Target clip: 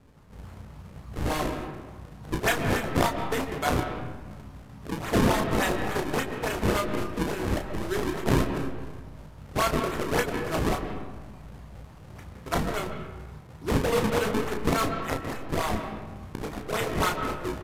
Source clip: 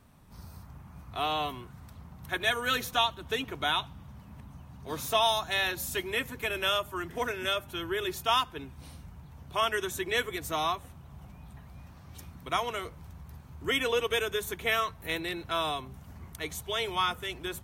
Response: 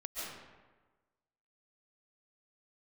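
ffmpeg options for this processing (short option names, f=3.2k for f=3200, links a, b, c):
-filter_complex "[0:a]asettb=1/sr,asplit=3[a][b][c];[a]atrim=end=14.954[d];[b]atrim=start=14.95:end=15.8,asetpts=PTS-STARTPTS,afade=t=in:d=0.004:c=qsin,afade=t=out:st=0.846:d=0.004:c=qsin,highpass=f=630:w=0.5412,highpass=f=630:w=1.3066[e];[c]atrim=start=15.796[f];[d][e]acrossfade=d=0.004:c1=hsin:c2=qsin[g];[g][f]acrossfade=d=0.004:c1=qsin:c2=hsin,acrusher=samples=38:mix=1:aa=0.000001:lfo=1:lforange=60.8:lforate=3.5,aecho=1:1:19|33:0.335|0.473,asplit=2[h][i];[1:a]atrim=start_sample=2205,lowpass=2.7k[j];[i][j]afir=irnorm=-1:irlink=0,volume=-4.5dB[k];[h][k]amix=inputs=2:normalize=0,aresample=32000,aresample=44100"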